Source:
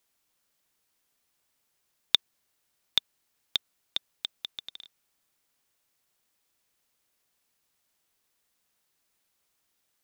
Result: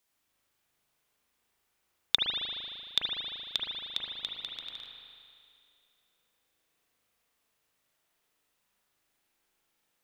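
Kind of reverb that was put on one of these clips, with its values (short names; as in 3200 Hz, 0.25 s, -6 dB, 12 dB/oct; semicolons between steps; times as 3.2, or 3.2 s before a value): spring tank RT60 2.4 s, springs 38 ms, chirp 70 ms, DRR -3.5 dB; gain -3 dB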